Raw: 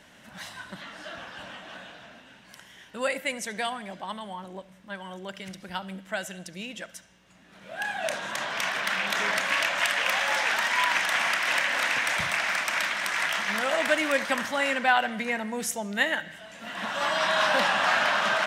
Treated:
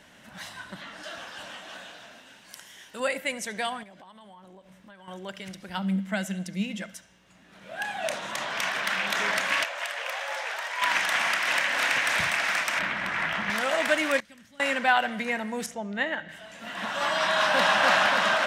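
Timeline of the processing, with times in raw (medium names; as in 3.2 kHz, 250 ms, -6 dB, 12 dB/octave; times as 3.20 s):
1.03–3.00 s: tone controls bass -6 dB, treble +8 dB
3.83–5.08 s: compression 10:1, threshold -46 dBFS
5.77–6.94 s: small resonant body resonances 200/2100 Hz, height 15 dB, ringing for 90 ms
7.83–8.48 s: band-stop 1.6 kHz
9.64–10.82 s: ladder high-pass 410 Hz, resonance 40%
11.45–11.96 s: echo throw 330 ms, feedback 60%, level -5 dB
12.79–13.50 s: tone controls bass +14 dB, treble -15 dB
14.20–14.60 s: amplifier tone stack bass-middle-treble 10-0-1
15.66–16.29 s: tape spacing loss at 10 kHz 20 dB
17.27–17.78 s: echo throw 290 ms, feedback 65%, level -2.5 dB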